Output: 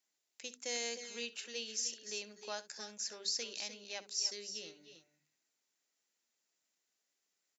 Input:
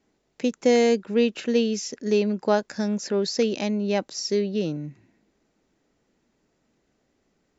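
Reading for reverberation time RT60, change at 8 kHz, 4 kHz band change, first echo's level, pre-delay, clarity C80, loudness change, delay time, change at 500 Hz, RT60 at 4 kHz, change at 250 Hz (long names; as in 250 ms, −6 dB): no reverb audible, can't be measured, −6.0 dB, −17.0 dB, no reverb audible, no reverb audible, −15.5 dB, 64 ms, −25.0 dB, no reverb audible, −32.0 dB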